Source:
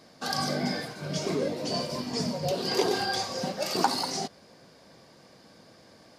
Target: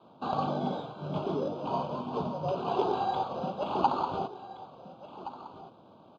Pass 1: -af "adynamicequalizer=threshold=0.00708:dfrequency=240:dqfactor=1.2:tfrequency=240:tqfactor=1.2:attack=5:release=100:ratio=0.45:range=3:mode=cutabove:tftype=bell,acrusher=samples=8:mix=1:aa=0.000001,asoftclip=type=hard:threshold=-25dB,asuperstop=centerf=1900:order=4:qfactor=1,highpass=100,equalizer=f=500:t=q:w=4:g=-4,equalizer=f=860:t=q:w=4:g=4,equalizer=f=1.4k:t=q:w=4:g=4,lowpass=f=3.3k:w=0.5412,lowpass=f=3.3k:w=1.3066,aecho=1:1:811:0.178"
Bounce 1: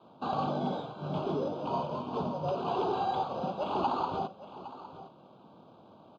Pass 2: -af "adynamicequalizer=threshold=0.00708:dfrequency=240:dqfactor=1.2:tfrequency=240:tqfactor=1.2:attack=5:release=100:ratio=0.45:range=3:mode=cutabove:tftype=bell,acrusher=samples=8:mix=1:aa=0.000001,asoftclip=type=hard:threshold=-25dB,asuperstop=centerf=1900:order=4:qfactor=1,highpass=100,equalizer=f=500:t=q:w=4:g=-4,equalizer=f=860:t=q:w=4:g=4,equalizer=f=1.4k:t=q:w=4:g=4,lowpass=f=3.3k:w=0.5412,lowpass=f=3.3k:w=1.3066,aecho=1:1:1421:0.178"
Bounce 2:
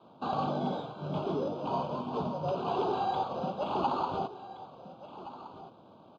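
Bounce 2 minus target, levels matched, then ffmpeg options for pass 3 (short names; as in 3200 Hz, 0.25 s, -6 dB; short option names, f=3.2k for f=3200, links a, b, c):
hard clip: distortion +8 dB
-af "adynamicequalizer=threshold=0.00708:dfrequency=240:dqfactor=1.2:tfrequency=240:tqfactor=1.2:attack=5:release=100:ratio=0.45:range=3:mode=cutabove:tftype=bell,acrusher=samples=8:mix=1:aa=0.000001,asoftclip=type=hard:threshold=-17dB,asuperstop=centerf=1900:order=4:qfactor=1,highpass=100,equalizer=f=500:t=q:w=4:g=-4,equalizer=f=860:t=q:w=4:g=4,equalizer=f=1.4k:t=q:w=4:g=4,lowpass=f=3.3k:w=0.5412,lowpass=f=3.3k:w=1.3066,aecho=1:1:1421:0.178"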